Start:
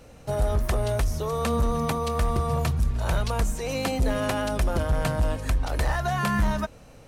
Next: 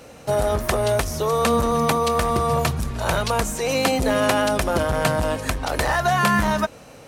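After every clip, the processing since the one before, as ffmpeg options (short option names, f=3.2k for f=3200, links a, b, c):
-af "highpass=f=240:p=1,volume=8.5dB"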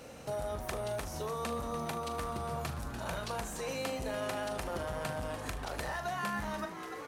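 -filter_complex "[0:a]asplit=2[a][b];[b]asplit=7[c][d][e][f][g][h][i];[c]adelay=291,afreqshift=120,volume=-13dB[j];[d]adelay=582,afreqshift=240,volume=-17dB[k];[e]adelay=873,afreqshift=360,volume=-21dB[l];[f]adelay=1164,afreqshift=480,volume=-25dB[m];[g]adelay=1455,afreqshift=600,volume=-29.1dB[n];[h]adelay=1746,afreqshift=720,volume=-33.1dB[o];[i]adelay=2037,afreqshift=840,volume=-37.1dB[p];[j][k][l][m][n][o][p]amix=inputs=7:normalize=0[q];[a][q]amix=inputs=2:normalize=0,acompressor=threshold=-38dB:ratio=2,asplit=2[r][s];[s]aecho=0:1:40|76:0.316|0.15[t];[r][t]amix=inputs=2:normalize=0,volume=-6dB"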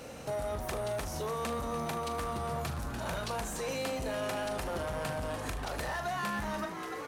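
-af "asoftclip=type=tanh:threshold=-32.5dB,volume=4dB"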